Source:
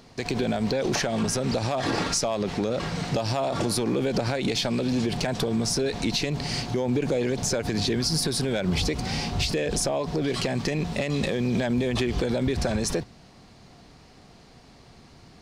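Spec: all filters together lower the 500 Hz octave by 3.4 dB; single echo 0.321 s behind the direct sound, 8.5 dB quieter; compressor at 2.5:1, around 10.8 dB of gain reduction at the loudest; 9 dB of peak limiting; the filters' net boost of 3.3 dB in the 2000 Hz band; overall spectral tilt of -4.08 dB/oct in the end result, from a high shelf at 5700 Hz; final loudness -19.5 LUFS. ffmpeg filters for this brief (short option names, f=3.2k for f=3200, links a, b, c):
-af "equalizer=f=500:t=o:g=-4.5,equalizer=f=2k:t=o:g=3.5,highshelf=f=5.7k:g=6.5,acompressor=threshold=-37dB:ratio=2.5,alimiter=level_in=4.5dB:limit=-24dB:level=0:latency=1,volume=-4.5dB,aecho=1:1:321:0.376,volume=17.5dB"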